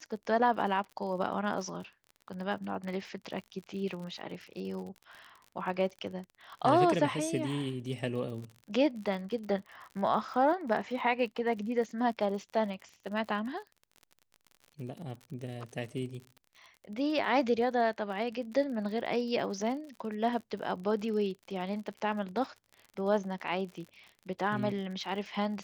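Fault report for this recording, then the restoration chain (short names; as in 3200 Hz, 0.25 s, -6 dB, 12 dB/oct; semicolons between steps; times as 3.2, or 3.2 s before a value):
crackle 51/s -41 dBFS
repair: de-click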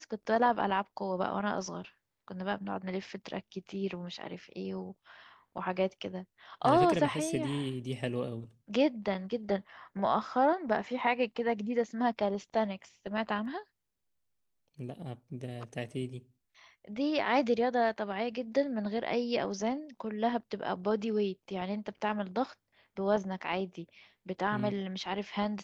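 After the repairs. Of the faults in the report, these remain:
none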